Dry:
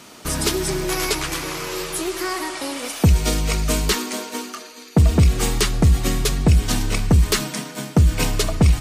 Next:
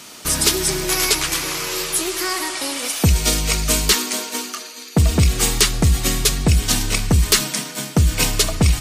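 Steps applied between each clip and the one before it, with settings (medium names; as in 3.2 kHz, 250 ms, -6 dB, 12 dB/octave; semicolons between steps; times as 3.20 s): treble shelf 2 kHz +9 dB; trim -1 dB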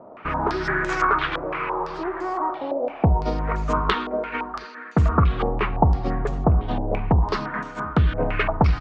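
LFO low-pass sine 0.27 Hz 750–1500 Hz; delay 719 ms -22.5 dB; step-sequenced low-pass 5.9 Hz 610–7000 Hz; trim -3.5 dB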